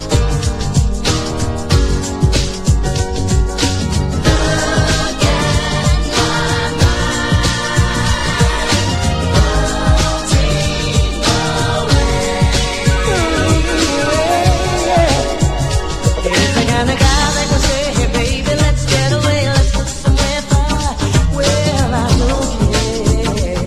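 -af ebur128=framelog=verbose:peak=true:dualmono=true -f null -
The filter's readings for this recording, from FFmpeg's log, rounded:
Integrated loudness:
  I:         -11.4 LUFS
  Threshold: -21.4 LUFS
Loudness range:
  LRA:         1.5 LU
  Threshold: -31.3 LUFS
  LRA low:   -12.1 LUFS
  LRA high:  -10.6 LUFS
True peak:
  Peak:       -2.2 dBFS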